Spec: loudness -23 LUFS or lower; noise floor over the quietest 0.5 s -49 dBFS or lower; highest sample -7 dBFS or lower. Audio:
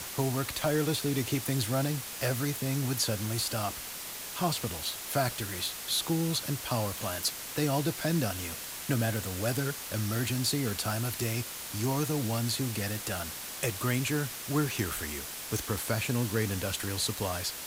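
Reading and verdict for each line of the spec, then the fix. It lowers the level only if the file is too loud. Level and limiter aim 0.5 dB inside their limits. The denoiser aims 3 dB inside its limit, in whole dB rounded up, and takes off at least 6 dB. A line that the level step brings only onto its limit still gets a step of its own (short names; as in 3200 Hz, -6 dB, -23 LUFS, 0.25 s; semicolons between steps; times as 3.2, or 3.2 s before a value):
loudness -31.0 LUFS: OK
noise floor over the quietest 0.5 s -40 dBFS: fail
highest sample -15.0 dBFS: OK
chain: denoiser 12 dB, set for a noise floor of -40 dBFS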